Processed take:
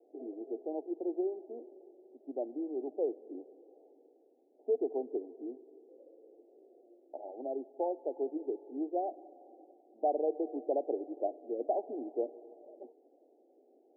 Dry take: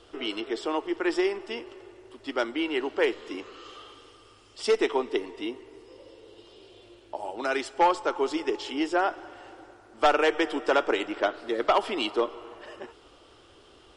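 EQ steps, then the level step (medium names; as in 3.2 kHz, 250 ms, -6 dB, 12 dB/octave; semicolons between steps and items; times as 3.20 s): elliptic high-pass 250 Hz, stop band 40 dB; steep low-pass 780 Hz 96 dB/octave; -7.0 dB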